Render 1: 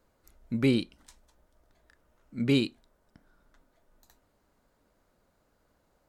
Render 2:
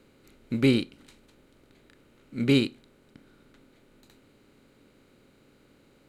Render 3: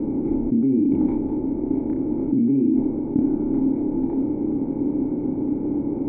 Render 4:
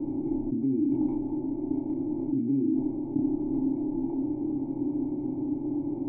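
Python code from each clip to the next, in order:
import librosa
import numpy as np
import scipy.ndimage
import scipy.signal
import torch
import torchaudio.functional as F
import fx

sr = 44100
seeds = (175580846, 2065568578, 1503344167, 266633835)

y1 = fx.bin_compress(x, sr, power=0.6)
y1 = fx.upward_expand(y1, sr, threshold_db=-40.0, expansion=1.5)
y1 = y1 * librosa.db_to_amplitude(2.5)
y2 = fx.formant_cascade(y1, sr, vowel='u')
y2 = fx.room_early_taps(y2, sr, ms=(30, 68), db=(-3.0, -16.5))
y2 = fx.env_flatten(y2, sr, amount_pct=100)
y2 = y2 * librosa.db_to_amplitude(1.0)
y3 = fx.air_absorb(y2, sr, metres=200.0)
y3 = fx.fixed_phaser(y3, sr, hz=310.0, stages=8)
y3 = y3 * librosa.db_to_amplitude(-5.0)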